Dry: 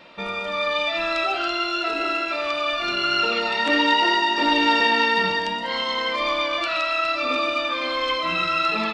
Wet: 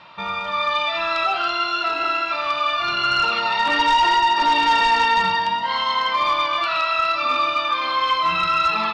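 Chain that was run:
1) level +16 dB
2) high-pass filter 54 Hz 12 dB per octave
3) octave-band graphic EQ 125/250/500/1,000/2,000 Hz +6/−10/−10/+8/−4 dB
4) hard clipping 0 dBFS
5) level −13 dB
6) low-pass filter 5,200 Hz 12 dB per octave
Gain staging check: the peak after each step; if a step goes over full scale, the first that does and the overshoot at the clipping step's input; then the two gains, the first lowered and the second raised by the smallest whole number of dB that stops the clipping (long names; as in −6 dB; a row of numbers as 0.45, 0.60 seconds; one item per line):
+9.0, +8.5, +9.5, 0.0, −13.0, −12.5 dBFS
step 1, 9.5 dB
step 1 +6 dB, step 5 −3 dB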